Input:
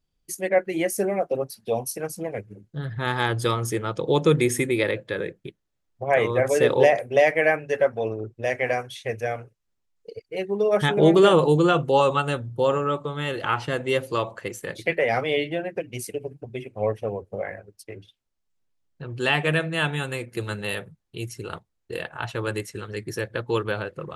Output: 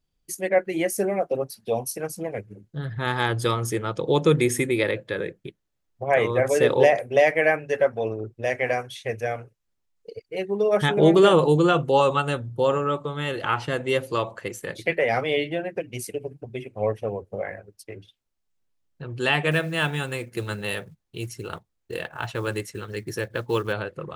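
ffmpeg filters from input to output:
-filter_complex "[0:a]asettb=1/sr,asplit=3[a][b][c];[a]atrim=end=19.514[d];[b]atrim=start=19.51:end=23.73,asetpts=PTS-STARTPTS,afade=t=in:d=0.004:c=qsin,afade=t=out:st=4.216:d=0.004:c=qsin,acrusher=bits=7:mode=log:mix=0:aa=0.000001[e];[c]atrim=start=23.726[f];[d][e]acrossfade=d=0.004:c1=hsin:c2=qsin[g];[g][f]acrossfade=d=0.004:c1=qsin:c2=hsin"

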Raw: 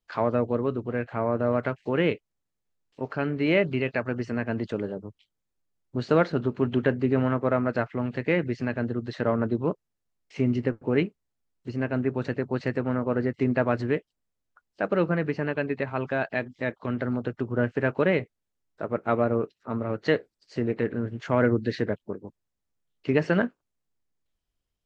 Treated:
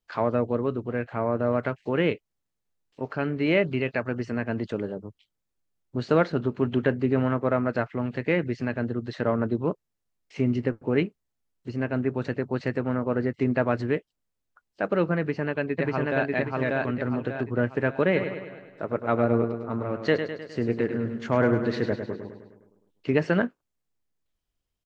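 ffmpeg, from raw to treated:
-filter_complex "[0:a]asplit=2[a][b];[b]afade=t=in:st=15.19:d=0.01,afade=t=out:st=16.29:d=0.01,aecho=0:1:590|1180|1770|2360|2950:0.944061|0.377624|0.15105|0.0604199|0.024168[c];[a][c]amix=inputs=2:normalize=0,asplit=3[d][e][f];[d]afade=t=out:st=18.14:d=0.02[g];[e]aecho=1:1:103|206|309|412|515|618|721:0.398|0.227|0.129|0.0737|0.042|0.024|0.0137,afade=t=in:st=18.14:d=0.02,afade=t=out:st=23.13:d=0.02[h];[f]afade=t=in:st=23.13:d=0.02[i];[g][h][i]amix=inputs=3:normalize=0"

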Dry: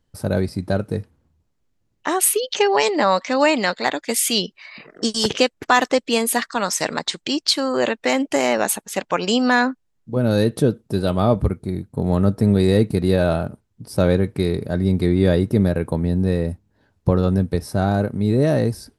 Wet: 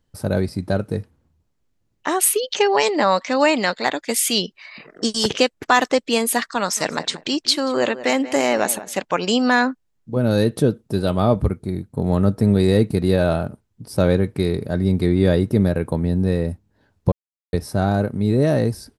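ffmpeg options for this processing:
-filter_complex "[0:a]asplit=3[a][b][c];[a]afade=t=out:st=6.76:d=0.02[d];[b]asplit=2[e][f];[f]adelay=183,lowpass=f=2.4k:p=1,volume=-14.5dB,asplit=2[g][h];[h]adelay=183,lowpass=f=2.4k:p=1,volume=0.2[i];[e][g][i]amix=inputs=3:normalize=0,afade=t=in:st=6.76:d=0.02,afade=t=out:st=8.95:d=0.02[j];[c]afade=t=in:st=8.95:d=0.02[k];[d][j][k]amix=inputs=3:normalize=0,asplit=3[l][m][n];[l]atrim=end=17.12,asetpts=PTS-STARTPTS,afade=t=out:st=17.116:d=0.004:c=hsin[o];[m]atrim=start=17.12:end=17.53,asetpts=PTS-STARTPTS,volume=0[p];[n]atrim=start=17.53,asetpts=PTS-STARTPTS,afade=t=in:d=0.004:c=hsin[q];[o][p][q]concat=n=3:v=0:a=1"

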